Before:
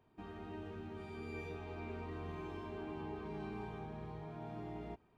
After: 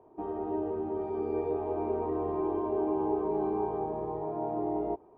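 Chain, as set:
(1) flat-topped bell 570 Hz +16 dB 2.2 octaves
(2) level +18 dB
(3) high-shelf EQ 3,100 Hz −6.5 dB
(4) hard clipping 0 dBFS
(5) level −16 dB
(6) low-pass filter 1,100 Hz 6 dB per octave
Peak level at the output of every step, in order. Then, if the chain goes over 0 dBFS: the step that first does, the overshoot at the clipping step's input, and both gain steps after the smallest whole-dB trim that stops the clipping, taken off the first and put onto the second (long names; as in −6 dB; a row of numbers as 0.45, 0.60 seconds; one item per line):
−20.0, −2.0, −2.0, −2.0, −18.0, −19.0 dBFS
no step passes full scale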